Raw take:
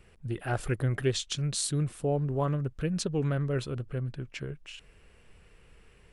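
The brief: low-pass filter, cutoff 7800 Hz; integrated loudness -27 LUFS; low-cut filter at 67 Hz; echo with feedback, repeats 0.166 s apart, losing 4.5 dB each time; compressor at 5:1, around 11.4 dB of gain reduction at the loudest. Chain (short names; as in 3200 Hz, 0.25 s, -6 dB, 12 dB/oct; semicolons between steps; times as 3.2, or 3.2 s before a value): HPF 67 Hz; LPF 7800 Hz; compressor 5:1, threshold -35 dBFS; feedback echo 0.166 s, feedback 60%, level -4.5 dB; gain +10 dB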